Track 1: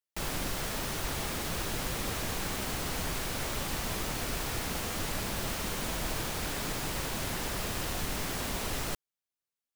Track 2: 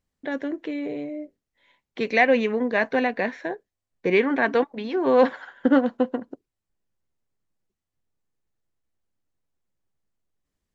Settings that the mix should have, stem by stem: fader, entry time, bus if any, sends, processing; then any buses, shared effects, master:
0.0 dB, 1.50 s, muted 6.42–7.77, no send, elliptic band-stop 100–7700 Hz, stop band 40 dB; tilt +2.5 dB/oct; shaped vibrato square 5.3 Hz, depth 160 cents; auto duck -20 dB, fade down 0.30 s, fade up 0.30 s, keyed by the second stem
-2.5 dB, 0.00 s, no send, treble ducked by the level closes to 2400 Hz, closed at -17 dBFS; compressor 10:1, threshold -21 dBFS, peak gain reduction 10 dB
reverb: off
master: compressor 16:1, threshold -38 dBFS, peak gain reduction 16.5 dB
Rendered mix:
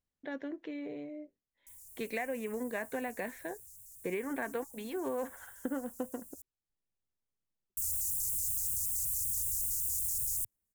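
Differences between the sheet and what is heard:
stem 2 -2.5 dB -> -11.0 dB; master: missing compressor 16:1, threshold -38 dBFS, peak gain reduction 16.5 dB

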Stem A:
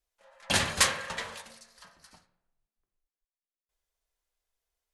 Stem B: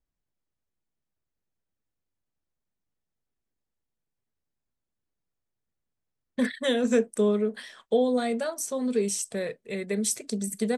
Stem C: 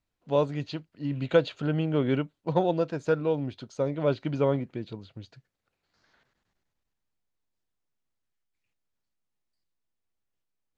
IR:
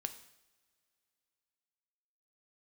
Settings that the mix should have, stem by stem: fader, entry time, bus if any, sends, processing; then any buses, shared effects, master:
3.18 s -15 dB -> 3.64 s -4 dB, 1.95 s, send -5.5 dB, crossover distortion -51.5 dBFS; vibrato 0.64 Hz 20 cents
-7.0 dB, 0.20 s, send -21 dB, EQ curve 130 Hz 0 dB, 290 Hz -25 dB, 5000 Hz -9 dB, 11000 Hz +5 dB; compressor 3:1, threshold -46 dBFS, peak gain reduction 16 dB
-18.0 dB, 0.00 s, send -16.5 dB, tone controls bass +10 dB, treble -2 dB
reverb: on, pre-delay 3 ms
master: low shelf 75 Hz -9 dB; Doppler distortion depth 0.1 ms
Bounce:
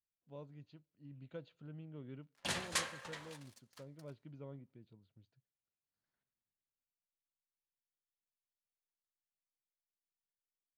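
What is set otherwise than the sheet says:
stem B: muted; stem C -18.0 dB -> -29.0 dB

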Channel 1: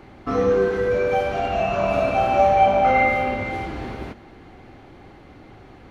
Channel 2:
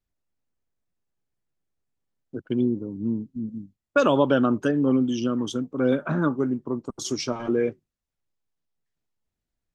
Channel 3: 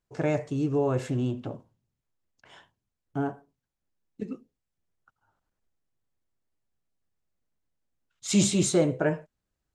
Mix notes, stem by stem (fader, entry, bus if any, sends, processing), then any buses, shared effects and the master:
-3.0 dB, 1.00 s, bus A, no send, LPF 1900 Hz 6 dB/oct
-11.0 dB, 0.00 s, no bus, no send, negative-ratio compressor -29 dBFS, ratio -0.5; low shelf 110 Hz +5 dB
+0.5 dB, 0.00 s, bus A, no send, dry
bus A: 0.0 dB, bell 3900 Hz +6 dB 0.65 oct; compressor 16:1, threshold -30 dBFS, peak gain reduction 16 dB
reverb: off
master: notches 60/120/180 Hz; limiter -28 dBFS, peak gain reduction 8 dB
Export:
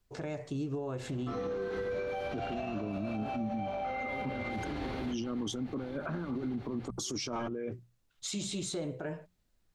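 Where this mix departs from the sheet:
stem 1: missing LPF 1900 Hz 6 dB/oct; stem 2 -11.0 dB -> 0.0 dB

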